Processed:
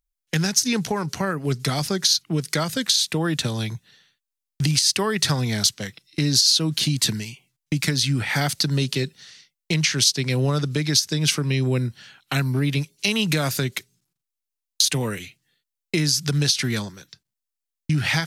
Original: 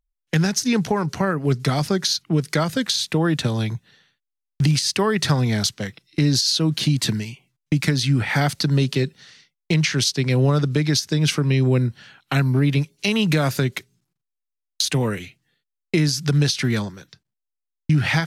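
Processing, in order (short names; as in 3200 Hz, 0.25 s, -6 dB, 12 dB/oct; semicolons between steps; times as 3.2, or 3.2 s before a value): high shelf 3000 Hz +10 dB; gain -4 dB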